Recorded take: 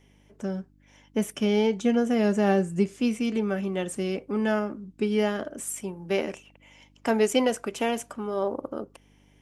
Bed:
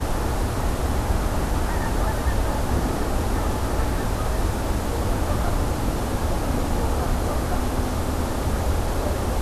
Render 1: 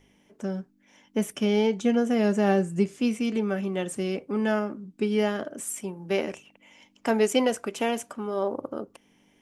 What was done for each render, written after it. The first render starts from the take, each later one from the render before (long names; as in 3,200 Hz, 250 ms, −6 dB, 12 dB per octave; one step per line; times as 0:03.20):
hum removal 50 Hz, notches 3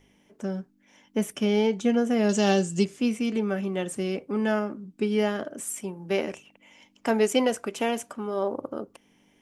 0:02.29–0:02.85: flat-topped bell 4,800 Hz +14 dB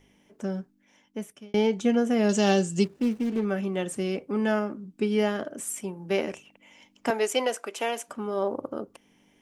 0:00.60–0:01.54: fade out
0:02.84–0:03.45: running median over 41 samples
0:07.10–0:08.08: high-pass filter 450 Hz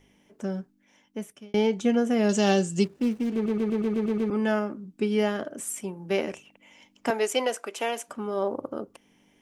0:03.34: stutter in place 0.12 s, 8 plays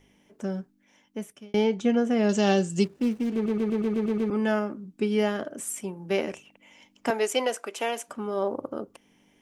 0:01.64–0:02.70: high-frequency loss of the air 50 metres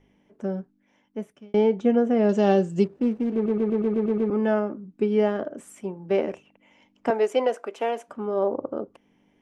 low-pass filter 1,500 Hz 6 dB per octave
dynamic equaliser 520 Hz, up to +5 dB, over −38 dBFS, Q 0.74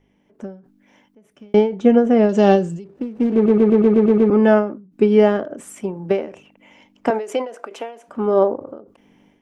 automatic gain control gain up to 11 dB
every ending faded ahead of time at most 120 dB per second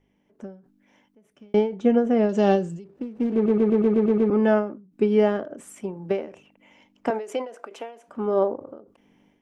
level −6 dB